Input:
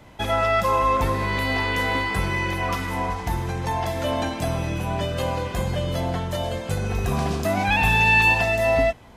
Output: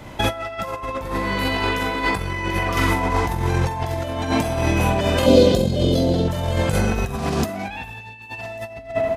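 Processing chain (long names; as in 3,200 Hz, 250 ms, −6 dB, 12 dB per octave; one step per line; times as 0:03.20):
double-tracking delay 45 ms −6 dB
on a send: tape delay 91 ms, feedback 71%, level −8.5 dB, low-pass 2,100 Hz
on the sum: compressor whose output falls as the input rises −26 dBFS, ratio −0.5
0:05.26–0:06.28: octave-band graphic EQ 250/500/1,000/2,000/4,000 Hz +9/+11/−11/−9/+11 dB
level +4 dB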